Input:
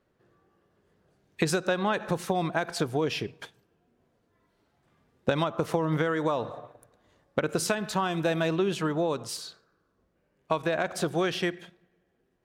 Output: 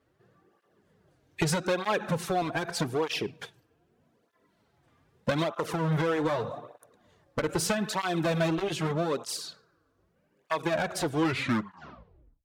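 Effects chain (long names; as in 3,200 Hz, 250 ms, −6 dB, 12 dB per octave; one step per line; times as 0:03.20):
turntable brake at the end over 1.38 s
asymmetric clip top −28.5 dBFS
through-zero flanger with one copy inverted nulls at 0.81 Hz, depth 5.7 ms
level +4.5 dB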